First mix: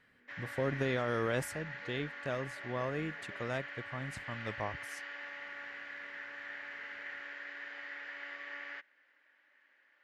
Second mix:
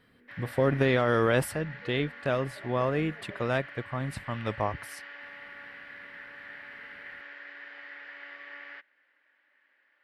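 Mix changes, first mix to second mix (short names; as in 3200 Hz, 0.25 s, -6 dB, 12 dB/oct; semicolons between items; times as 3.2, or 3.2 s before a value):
speech +9.0 dB; master: add bell 6600 Hz -11 dB 0.46 oct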